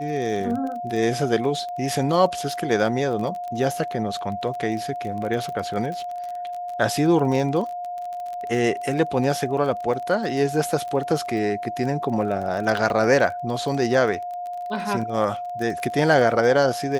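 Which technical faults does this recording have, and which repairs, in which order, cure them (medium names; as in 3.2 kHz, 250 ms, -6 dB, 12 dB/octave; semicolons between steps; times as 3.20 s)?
crackle 23 per s -29 dBFS
whine 710 Hz -28 dBFS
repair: de-click; band-stop 710 Hz, Q 30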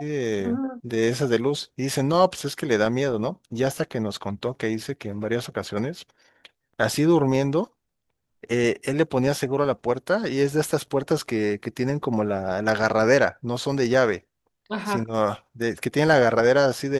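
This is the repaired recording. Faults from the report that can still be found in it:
nothing left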